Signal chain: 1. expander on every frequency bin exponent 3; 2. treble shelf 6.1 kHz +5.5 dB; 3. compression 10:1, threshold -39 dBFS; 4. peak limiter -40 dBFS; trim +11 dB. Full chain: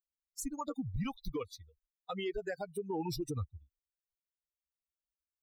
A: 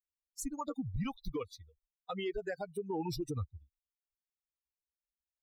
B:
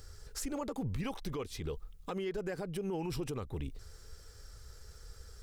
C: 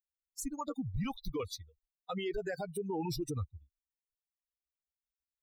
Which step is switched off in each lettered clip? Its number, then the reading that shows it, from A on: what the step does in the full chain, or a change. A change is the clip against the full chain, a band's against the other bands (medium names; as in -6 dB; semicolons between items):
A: 2, momentary loudness spread change +1 LU; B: 1, 1 kHz band -2.0 dB; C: 3, mean gain reduction 7.0 dB